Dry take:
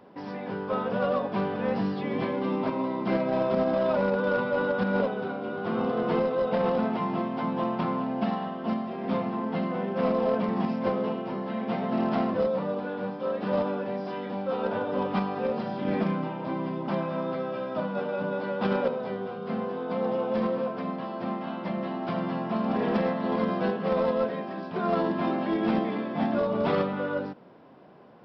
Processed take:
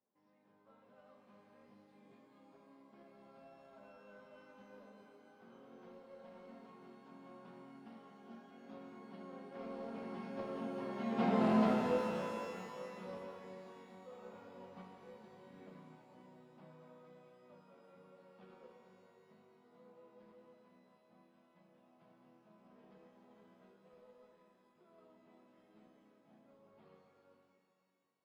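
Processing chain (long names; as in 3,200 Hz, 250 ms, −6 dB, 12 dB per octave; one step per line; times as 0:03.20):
source passing by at 0:11.37, 15 m/s, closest 3.1 metres
reverb with rising layers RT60 2.2 s, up +12 semitones, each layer −8 dB, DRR 2.5 dB
level −4 dB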